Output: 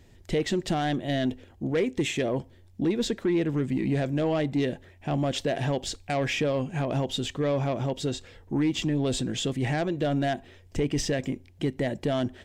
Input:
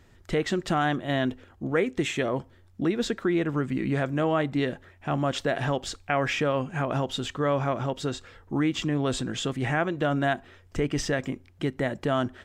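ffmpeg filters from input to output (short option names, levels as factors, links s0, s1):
-af "aeval=exprs='0.266*(cos(1*acos(clip(val(0)/0.266,-1,1)))-cos(1*PI/2))+0.0335*(cos(5*acos(clip(val(0)/0.266,-1,1)))-cos(5*PI/2))':c=same,equalizer=f=1300:t=o:w=0.78:g=-11.5,volume=0.794"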